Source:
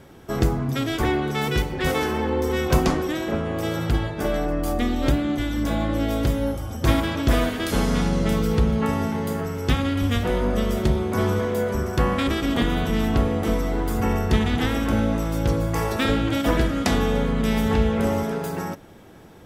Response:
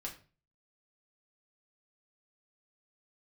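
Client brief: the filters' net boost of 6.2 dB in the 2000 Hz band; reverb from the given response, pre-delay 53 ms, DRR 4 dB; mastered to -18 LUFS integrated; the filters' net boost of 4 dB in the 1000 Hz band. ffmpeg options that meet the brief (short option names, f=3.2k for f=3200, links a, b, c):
-filter_complex "[0:a]equalizer=f=1k:t=o:g=3.5,equalizer=f=2k:t=o:g=6.5,asplit=2[a][b];[1:a]atrim=start_sample=2205,adelay=53[c];[b][c]afir=irnorm=-1:irlink=0,volume=-2.5dB[d];[a][d]amix=inputs=2:normalize=0,volume=2.5dB"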